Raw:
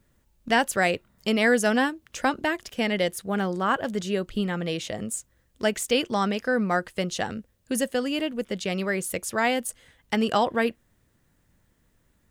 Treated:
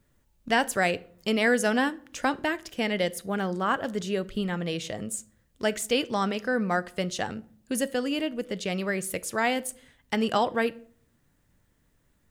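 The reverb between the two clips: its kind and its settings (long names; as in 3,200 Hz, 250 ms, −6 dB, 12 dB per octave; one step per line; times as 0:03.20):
rectangular room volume 680 cubic metres, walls furnished, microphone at 0.35 metres
level −2 dB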